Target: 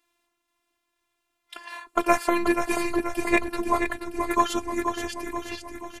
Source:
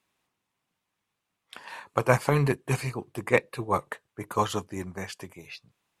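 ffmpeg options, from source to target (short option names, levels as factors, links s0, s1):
-filter_complex "[0:a]asplit=8[s0][s1][s2][s3][s4][s5][s6][s7];[s1]adelay=481,afreqshift=-39,volume=0.447[s8];[s2]adelay=962,afreqshift=-78,volume=0.26[s9];[s3]adelay=1443,afreqshift=-117,volume=0.15[s10];[s4]adelay=1924,afreqshift=-156,volume=0.0871[s11];[s5]adelay=2405,afreqshift=-195,volume=0.0507[s12];[s6]adelay=2886,afreqshift=-234,volume=0.0292[s13];[s7]adelay=3367,afreqshift=-273,volume=0.017[s14];[s0][s8][s9][s10][s11][s12][s13][s14]amix=inputs=8:normalize=0,afftfilt=real='hypot(re,im)*cos(PI*b)':imag='0':win_size=512:overlap=0.75,volume=2.11"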